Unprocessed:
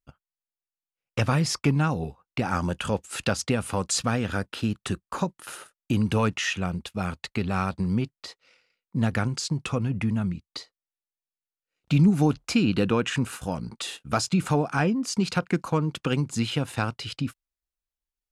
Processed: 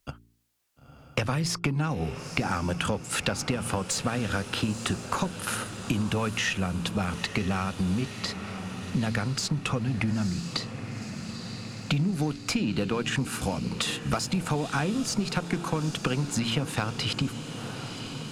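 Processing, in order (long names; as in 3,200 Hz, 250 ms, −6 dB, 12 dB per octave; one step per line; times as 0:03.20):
harmonic generator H 4 −27 dB, 8 −37 dB, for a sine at −11 dBFS
hum removal 57.24 Hz, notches 7
downward compressor 6 to 1, threshold −33 dBFS, peak gain reduction 17 dB
on a send: feedback delay with all-pass diffusion 942 ms, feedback 63%, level −13.5 dB
on the sum: multiband upward and downward compressor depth 40%
level +8 dB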